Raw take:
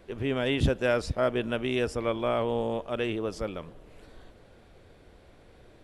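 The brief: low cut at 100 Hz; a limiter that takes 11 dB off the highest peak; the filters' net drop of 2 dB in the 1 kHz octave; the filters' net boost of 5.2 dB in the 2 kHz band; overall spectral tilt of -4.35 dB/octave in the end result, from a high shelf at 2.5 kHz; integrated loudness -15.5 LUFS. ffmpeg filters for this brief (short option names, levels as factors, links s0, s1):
-af "highpass=100,equalizer=f=1000:t=o:g=-6.5,equalizer=f=2000:t=o:g=5,highshelf=f=2500:g=7.5,volume=7.5,alimiter=limit=0.596:level=0:latency=1"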